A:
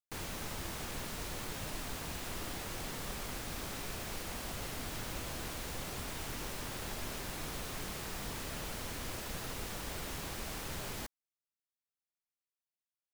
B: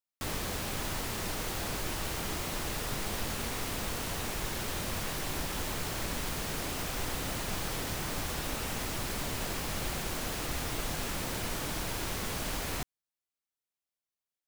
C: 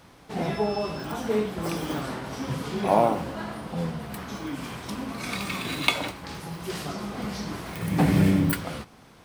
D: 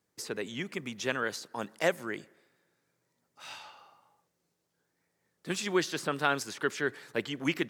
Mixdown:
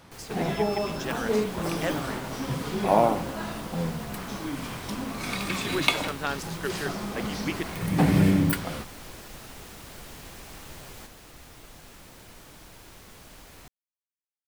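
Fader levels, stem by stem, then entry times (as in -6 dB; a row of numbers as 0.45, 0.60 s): -4.0, -13.5, 0.0, -3.0 dB; 0.00, 0.85, 0.00, 0.00 s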